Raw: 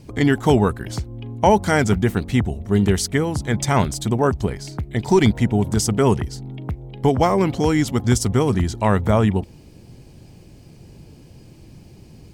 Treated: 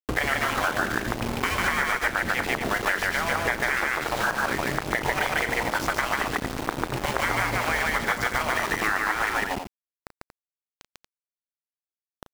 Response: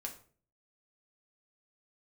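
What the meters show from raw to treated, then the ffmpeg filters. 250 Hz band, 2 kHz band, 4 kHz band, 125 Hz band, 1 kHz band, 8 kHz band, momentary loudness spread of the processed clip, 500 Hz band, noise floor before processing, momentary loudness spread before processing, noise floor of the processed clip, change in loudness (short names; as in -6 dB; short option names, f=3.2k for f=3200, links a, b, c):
-14.0 dB, +6.5 dB, -0.5 dB, -16.0 dB, -2.0 dB, -6.0 dB, 4 LU, -10.5 dB, -46 dBFS, 13 LU, under -85 dBFS, -5.5 dB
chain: -filter_complex "[0:a]afftfilt=real='re*lt(hypot(re,im),0.2)':imag='im*lt(hypot(re,im),0.2)':win_size=1024:overlap=0.75,lowpass=f=1.8k:t=q:w=2.1,aeval=exprs='val(0)*gte(abs(val(0)),0.0224)':c=same,asplit=2[a][b];[b]aecho=0:1:34.99|145.8|233.2:0.282|0.891|0.316[c];[a][c]amix=inputs=2:normalize=0,acompressor=threshold=-30dB:ratio=6,volume=9dB"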